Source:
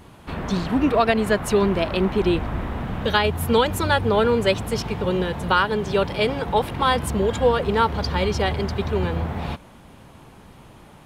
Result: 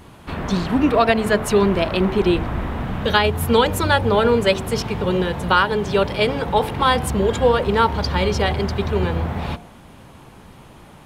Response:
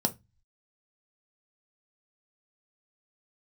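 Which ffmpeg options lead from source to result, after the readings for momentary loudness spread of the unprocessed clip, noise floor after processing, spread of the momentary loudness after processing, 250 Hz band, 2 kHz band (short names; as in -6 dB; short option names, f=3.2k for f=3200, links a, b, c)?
8 LU, -44 dBFS, 8 LU, +2.5 dB, +3.0 dB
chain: -af "bandreject=f=54.39:t=h:w=4,bandreject=f=108.78:t=h:w=4,bandreject=f=163.17:t=h:w=4,bandreject=f=217.56:t=h:w=4,bandreject=f=271.95:t=h:w=4,bandreject=f=326.34:t=h:w=4,bandreject=f=380.73:t=h:w=4,bandreject=f=435.12:t=h:w=4,bandreject=f=489.51:t=h:w=4,bandreject=f=543.9:t=h:w=4,bandreject=f=598.29:t=h:w=4,bandreject=f=652.68:t=h:w=4,bandreject=f=707.07:t=h:w=4,bandreject=f=761.46:t=h:w=4,bandreject=f=815.85:t=h:w=4,bandreject=f=870.24:t=h:w=4,bandreject=f=924.63:t=h:w=4,volume=3dB"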